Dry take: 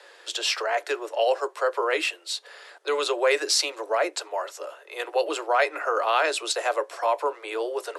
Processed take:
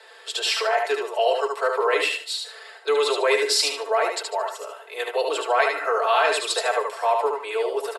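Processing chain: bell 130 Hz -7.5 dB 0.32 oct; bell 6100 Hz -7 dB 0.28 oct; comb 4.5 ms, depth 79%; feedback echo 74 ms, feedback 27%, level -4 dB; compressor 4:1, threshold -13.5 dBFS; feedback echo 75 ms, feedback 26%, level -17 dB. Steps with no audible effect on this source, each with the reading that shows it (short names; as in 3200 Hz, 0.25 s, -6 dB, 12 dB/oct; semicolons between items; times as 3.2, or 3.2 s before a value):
bell 130 Hz: input band starts at 290 Hz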